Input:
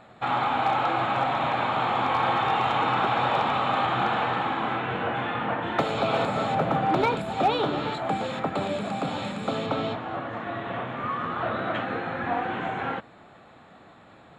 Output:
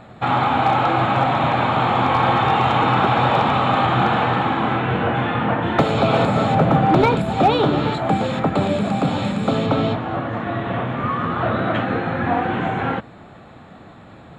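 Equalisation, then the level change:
low-shelf EQ 270 Hz +10 dB
+5.5 dB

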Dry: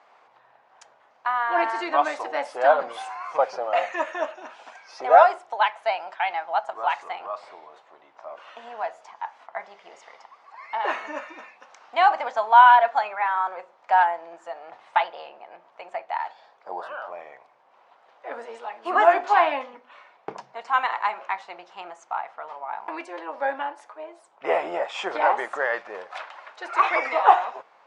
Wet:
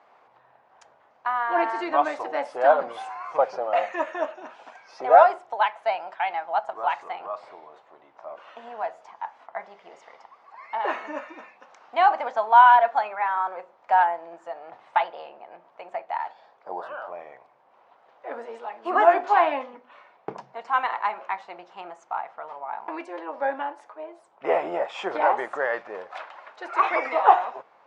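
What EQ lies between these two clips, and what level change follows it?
spectral tilt −2 dB per octave
−1.0 dB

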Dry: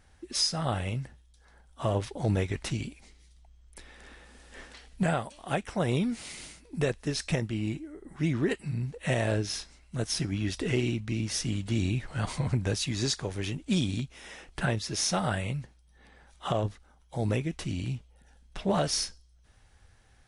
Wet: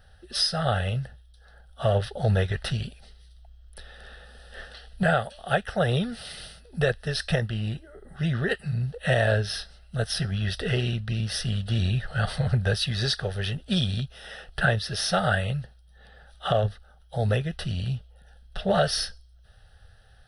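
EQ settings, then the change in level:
dynamic equaliser 1,800 Hz, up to +5 dB, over −49 dBFS, Q 1.9
phaser with its sweep stopped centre 1,500 Hz, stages 8
+7.0 dB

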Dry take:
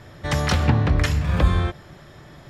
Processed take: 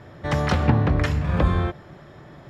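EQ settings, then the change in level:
low-shelf EQ 78 Hz −9.5 dB
high-shelf EQ 2,100 Hz −9 dB
high-shelf EQ 6,000 Hz −5.5 dB
+2.5 dB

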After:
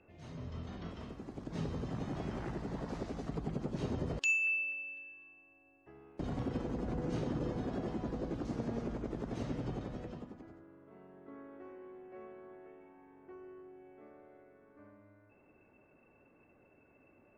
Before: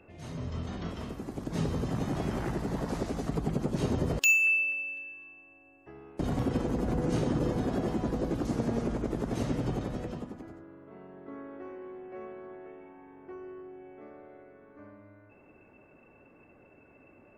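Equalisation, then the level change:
low-pass filter 5,900 Hz 12 dB per octave
−7.5 dB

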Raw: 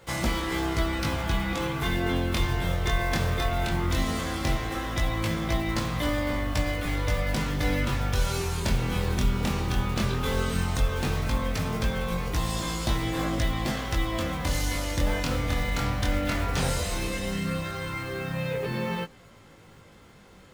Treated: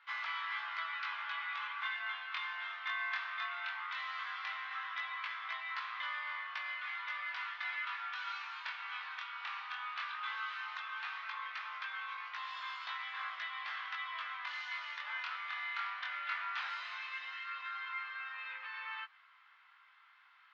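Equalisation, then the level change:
Butterworth high-pass 1,100 Hz 36 dB per octave
Bessel low-pass filter 2,800 Hz, order 4
high-frequency loss of the air 170 metres
−1.5 dB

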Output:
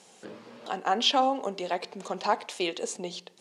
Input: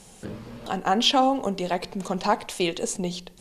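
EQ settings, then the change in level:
band-pass filter 320–7,400 Hz
−3.0 dB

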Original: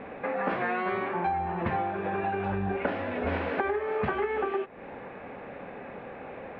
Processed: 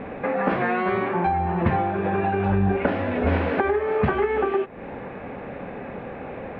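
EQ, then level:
low-shelf EQ 290 Hz +8 dB
+4.5 dB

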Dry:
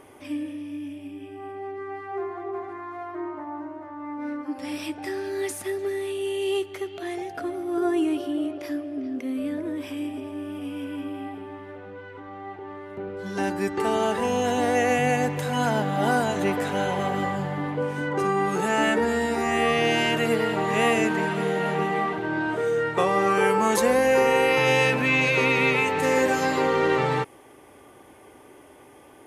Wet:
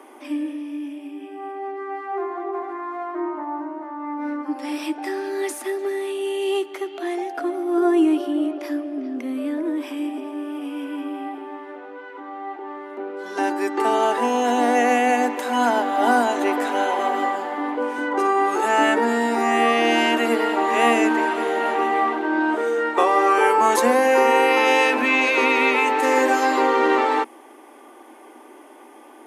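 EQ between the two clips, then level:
Chebyshev high-pass with heavy ripple 230 Hz, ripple 6 dB
+7.5 dB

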